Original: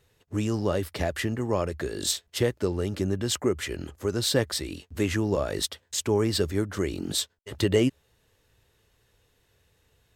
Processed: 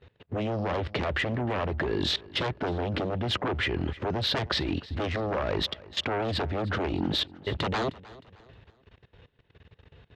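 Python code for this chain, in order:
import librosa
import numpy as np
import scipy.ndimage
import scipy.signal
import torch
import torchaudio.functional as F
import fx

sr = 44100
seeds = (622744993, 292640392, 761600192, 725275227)

p1 = scipy.signal.sosfilt(scipy.signal.butter(4, 3500.0, 'lowpass', fs=sr, output='sos'), x)
p2 = fx.low_shelf(p1, sr, hz=250.0, db=8.0)
p3 = fx.fold_sine(p2, sr, drive_db=15, ceiling_db=-6.0)
p4 = fx.level_steps(p3, sr, step_db=21)
p5 = fx.highpass(p4, sr, hz=110.0, slope=6)
p6 = p5 + fx.echo_feedback(p5, sr, ms=310, feedback_pct=38, wet_db=-20.0, dry=0)
y = p6 * librosa.db_to_amplitude(-6.0)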